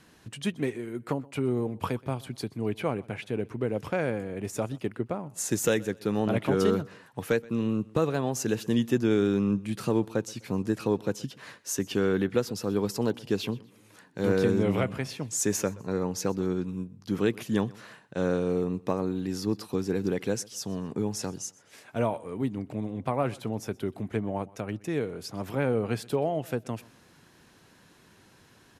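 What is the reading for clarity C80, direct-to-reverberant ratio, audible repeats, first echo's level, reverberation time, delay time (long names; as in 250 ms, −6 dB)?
no reverb audible, no reverb audible, 2, −23.0 dB, no reverb audible, 125 ms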